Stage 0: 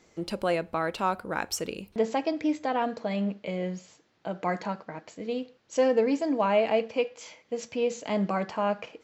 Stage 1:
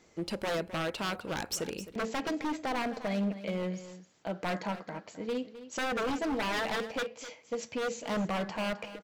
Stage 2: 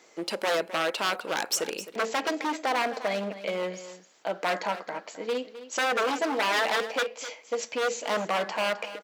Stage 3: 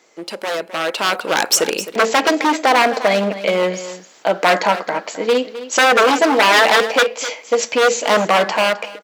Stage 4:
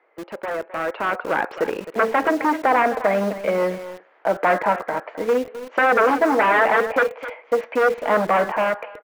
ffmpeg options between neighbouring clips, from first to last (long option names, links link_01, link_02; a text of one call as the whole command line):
ffmpeg -i in.wav -af "aeval=exprs='0.0562*(abs(mod(val(0)/0.0562+3,4)-2)-1)':channel_layout=same,aecho=1:1:261:0.2,volume=-1.5dB" out.wav
ffmpeg -i in.wav -af "highpass=430,volume=7.5dB" out.wav
ffmpeg -i in.wav -af "dynaudnorm=framelen=710:gausssize=3:maxgain=13dB,volume=2dB" out.wav
ffmpeg -i in.wav -filter_complex "[0:a]lowpass=frequency=2000:width=0.5412,lowpass=frequency=2000:width=1.3066,acrossover=split=340[link_01][link_02];[link_01]acrusher=bits=5:mix=0:aa=0.000001[link_03];[link_03][link_02]amix=inputs=2:normalize=0,volume=-3.5dB" out.wav